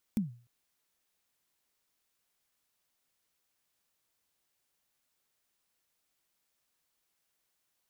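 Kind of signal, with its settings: kick drum length 0.30 s, from 230 Hz, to 120 Hz, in 137 ms, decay 0.40 s, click on, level -23 dB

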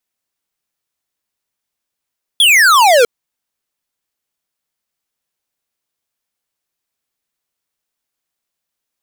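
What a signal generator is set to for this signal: laser zap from 3.5 kHz, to 450 Hz, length 0.65 s square, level -8 dB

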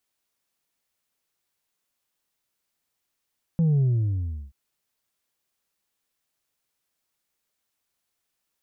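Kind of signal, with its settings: sub drop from 170 Hz, over 0.93 s, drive 2.5 dB, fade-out 0.71 s, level -18 dB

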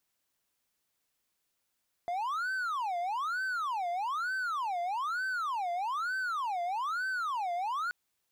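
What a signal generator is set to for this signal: siren wail 692–1540 Hz 1.1 per s triangle -28.5 dBFS 5.83 s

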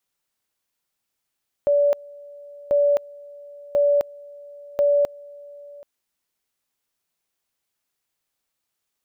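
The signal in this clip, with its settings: two-level tone 576 Hz -14.5 dBFS, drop 24 dB, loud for 0.26 s, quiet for 0.78 s, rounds 4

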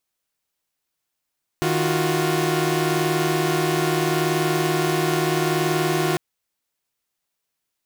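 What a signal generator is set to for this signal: chord D#3/F4/F#4 saw, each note -21 dBFS 4.55 s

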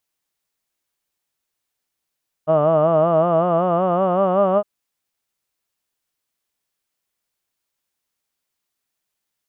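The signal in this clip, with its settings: formant vowel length 2.16 s, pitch 152 Hz, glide +4.5 st, F1 630 Hz, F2 1.2 kHz, F3 2.9 kHz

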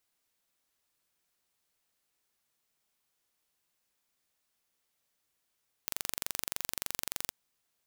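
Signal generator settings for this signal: pulse train 23.4 per s, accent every 0, -6 dBFS 1.45 s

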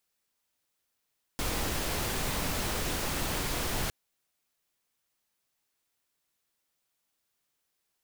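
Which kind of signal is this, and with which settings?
noise pink, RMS -31.5 dBFS 2.51 s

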